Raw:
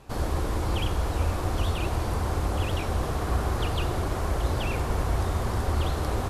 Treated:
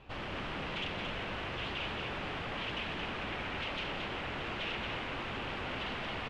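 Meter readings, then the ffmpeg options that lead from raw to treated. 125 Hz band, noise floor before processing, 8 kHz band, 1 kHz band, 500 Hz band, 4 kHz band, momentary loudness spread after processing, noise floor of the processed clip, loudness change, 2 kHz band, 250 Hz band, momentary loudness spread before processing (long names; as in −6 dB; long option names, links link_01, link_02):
−18.5 dB, −30 dBFS, −20.0 dB, −8.0 dB, −10.0 dB, −0.5 dB, 2 LU, −40 dBFS, −9.0 dB, +0.5 dB, −9.5 dB, 1 LU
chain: -af "aeval=exprs='0.0299*(abs(mod(val(0)/0.0299+3,4)-2)-1)':channel_layout=same,lowpass=frequency=2900:width_type=q:width=2.9,aecho=1:1:224:0.562,volume=-6dB"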